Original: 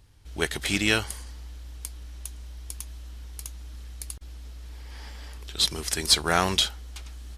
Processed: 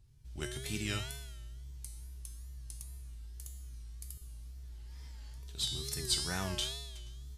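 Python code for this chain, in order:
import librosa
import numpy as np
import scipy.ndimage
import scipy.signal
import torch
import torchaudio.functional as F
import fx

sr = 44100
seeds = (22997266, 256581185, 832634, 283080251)

y = fx.bass_treble(x, sr, bass_db=13, treble_db=7)
y = fx.comb_fb(y, sr, f0_hz=130.0, decay_s=1.1, harmonics='odd', damping=0.0, mix_pct=90)
y = fx.wow_flutter(y, sr, seeds[0], rate_hz=2.1, depth_cents=120.0)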